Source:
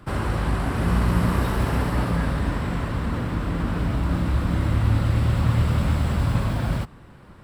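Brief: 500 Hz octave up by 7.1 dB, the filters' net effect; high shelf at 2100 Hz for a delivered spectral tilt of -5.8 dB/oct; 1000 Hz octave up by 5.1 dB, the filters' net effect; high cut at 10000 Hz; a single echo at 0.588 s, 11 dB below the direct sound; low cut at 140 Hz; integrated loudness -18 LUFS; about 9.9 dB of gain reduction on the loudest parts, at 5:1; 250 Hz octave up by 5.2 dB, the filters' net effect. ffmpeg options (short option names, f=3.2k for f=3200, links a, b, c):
-af "highpass=140,lowpass=10k,equalizer=f=250:t=o:g=6.5,equalizer=f=500:t=o:g=6,equalizer=f=1k:t=o:g=5.5,highshelf=f=2.1k:g=-5.5,acompressor=threshold=-28dB:ratio=5,aecho=1:1:588:0.282,volume=13dB"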